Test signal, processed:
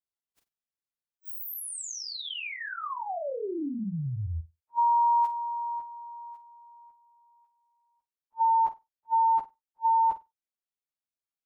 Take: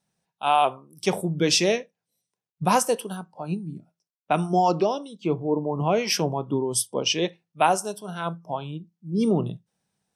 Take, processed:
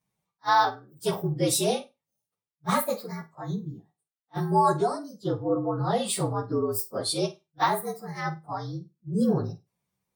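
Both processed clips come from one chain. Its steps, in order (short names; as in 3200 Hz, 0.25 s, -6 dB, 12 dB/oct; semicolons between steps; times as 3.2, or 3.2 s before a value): inharmonic rescaling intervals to 116%; flutter echo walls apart 8.4 m, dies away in 0.21 s; attack slew limiter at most 590 dB/s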